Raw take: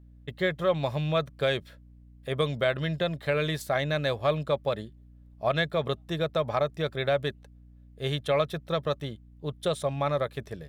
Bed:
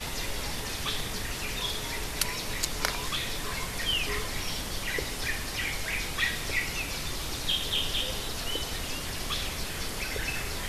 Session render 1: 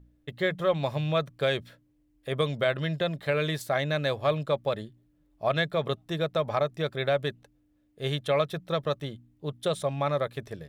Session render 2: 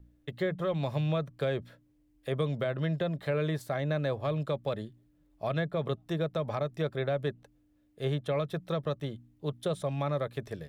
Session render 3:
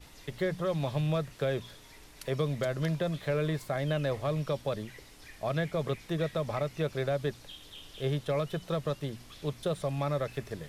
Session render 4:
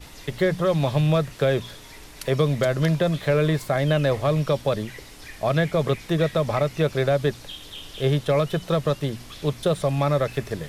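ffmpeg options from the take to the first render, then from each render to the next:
-af "bandreject=f=60:t=h:w=4,bandreject=f=120:t=h:w=4,bandreject=f=180:t=h:w=4,bandreject=f=240:t=h:w=4"
-filter_complex "[0:a]acrossover=split=360|1500[a][b][c];[b]alimiter=level_in=2.5dB:limit=-24dB:level=0:latency=1:release=135,volume=-2.5dB[d];[c]acompressor=threshold=-45dB:ratio=5[e];[a][d][e]amix=inputs=3:normalize=0"
-filter_complex "[1:a]volume=-19.5dB[a];[0:a][a]amix=inputs=2:normalize=0"
-af "volume=9.5dB"

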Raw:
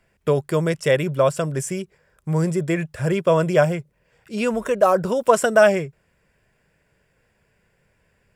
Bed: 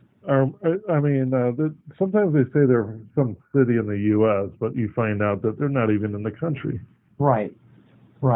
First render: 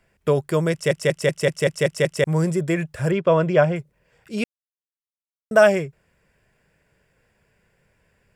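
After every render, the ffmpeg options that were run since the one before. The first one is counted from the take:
-filter_complex "[0:a]asettb=1/sr,asplit=3[a][b][c];[a]atrim=end=3.114[d];[b]atrim=start=3.11:end=3.76,asetpts=PTS-STARTPTS,afade=t=in:d=0.004:c=qsin,afade=t=out:st=0.646:d=0.004:c=qsin,lowpass=3.6k[e];[c]atrim=start=3.756[f];[d][e]acrossfade=d=0.004:c1=hsin:c2=qsin[g];[g][f]acrossfade=d=0.004:c1=qsin:c2=hsin,asplit=11[h][i][j][k][l][m][n][o][p][q][r];[h]atrim=end=0.912[s];[i]atrim=start=0.718:end=0.912[t];[j]atrim=start=0.718:end=0.912[u];[k]atrim=start=0.718:end=0.912[v];[l]atrim=start=0.718:end=0.912[w];[m]atrim=start=0.718:end=0.912[x];[n]atrim=start=0.718:end=0.912[y];[o]atrim=start=0.718:end=0.912[z];[p]atrim=start=2.238:end=4.44,asetpts=PTS-STARTPTS,afade=t=out:st=2.198:d=0.004:c=hsin[aa];[q]atrim=start=4.44:end=5.51,asetpts=PTS-STARTPTS,volume=0[ab];[r]atrim=start=5.51,asetpts=PTS-STARTPTS,afade=t=in:d=0.004:c=hsin[ac];[s][t]acrossfade=d=0.004:c1=hsin:c2=hsin[ad];[ad][u]acrossfade=d=0.004:c1=hsin:c2=hsin[ae];[ae][v]acrossfade=d=0.004:c1=hsin:c2=hsin[af];[af][w]acrossfade=d=0.004:c1=hsin:c2=hsin[ag];[ag][x]acrossfade=d=0.004:c1=hsin:c2=hsin[ah];[ah][y]acrossfade=d=0.004:c1=hsin:c2=hsin[ai];[ai][z]acrossfade=d=0.004:c1=hsin:c2=hsin[aj];[aa][ab][ac]concat=n=3:v=0:a=1[ak];[aj][ak]acrossfade=d=0.004:c1=hsin:c2=hsin"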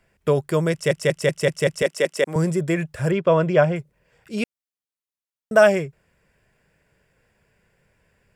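-filter_complex "[0:a]asettb=1/sr,asplit=3[a][b][c];[a]atrim=end=1.824[d];[b]atrim=start=1.82:end=2.36,asetpts=PTS-STARTPTS,afade=t=in:d=0.004:c=qsin,afade=t=out:st=0.536:d=0.004:c=qsin,highpass=f=230:w=0.5412,highpass=f=230:w=1.3066[e];[c]atrim=start=2.356[f];[d][e]acrossfade=d=0.004:c1=hsin:c2=qsin[g];[g][f]acrossfade=d=0.004:c1=qsin:c2=hsin"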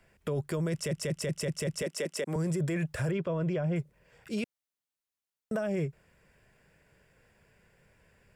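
-filter_complex "[0:a]acrossover=split=370[a][b];[b]acompressor=threshold=-25dB:ratio=6[c];[a][c]amix=inputs=2:normalize=0,alimiter=limit=-24dB:level=0:latency=1:release=13"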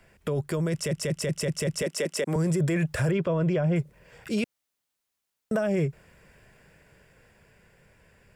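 -filter_complex "[0:a]dynaudnorm=f=290:g=13:m=3dB,asplit=2[a][b];[b]alimiter=level_in=5.5dB:limit=-24dB:level=0:latency=1:release=71,volume=-5.5dB,volume=0dB[c];[a][c]amix=inputs=2:normalize=0"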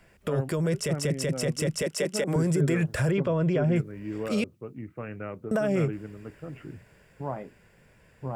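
-filter_complex "[1:a]volume=-15dB[a];[0:a][a]amix=inputs=2:normalize=0"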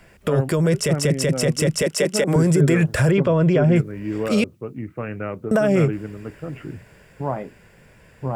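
-af "volume=8dB"

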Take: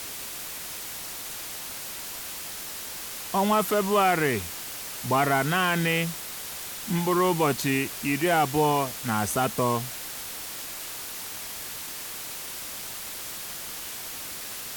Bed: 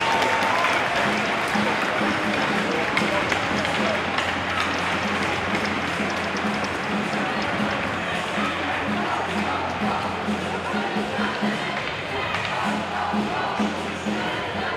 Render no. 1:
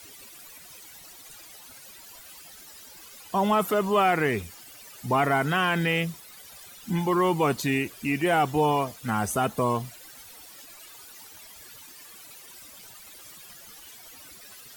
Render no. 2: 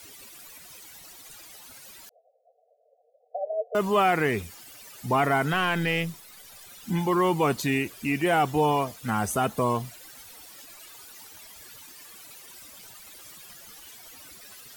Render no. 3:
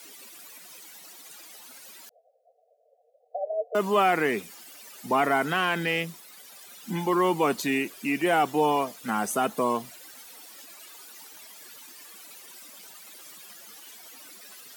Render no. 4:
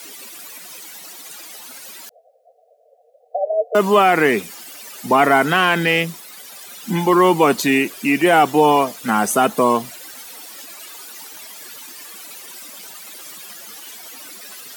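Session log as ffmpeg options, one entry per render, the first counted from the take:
-af "afftdn=nr=15:nf=-37"
-filter_complex "[0:a]asettb=1/sr,asplit=3[a][b][c];[a]atrim=end=2.094[d];[b]atrim=start=2.09:end=3.75,asetpts=PTS-STARTPTS,afade=t=in:d=0.004:c=qsin,afade=t=out:st=1.656:d=0.004:c=qsin,asuperpass=centerf=580:order=20:qfactor=1.9[e];[c]atrim=start=3.746[f];[d][e]acrossfade=d=0.004:c1=hsin:c2=qsin[g];[g][f]acrossfade=d=0.004:c1=qsin:c2=hsin,asettb=1/sr,asplit=3[h][i][j];[h]atrim=end=5.534[k];[i]atrim=start=5.53:end=6.7,asetpts=PTS-STARTPTS,afade=t=in:d=0.004:c=qsin,afade=t=out:st=1.166:d=0.004:c=qsin,aeval=exprs='if(lt(val(0),0),0.708*val(0),val(0))':c=same[l];[j]atrim=start=6.696[m];[k][l]acrossfade=d=0.004:c1=hsin:c2=qsin[n];[n][m]acrossfade=d=0.004:c1=qsin:c2=hsin"
-af "highpass=f=190:w=0.5412,highpass=f=190:w=1.3066"
-af "volume=10dB,alimiter=limit=-3dB:level=0:latency=1"

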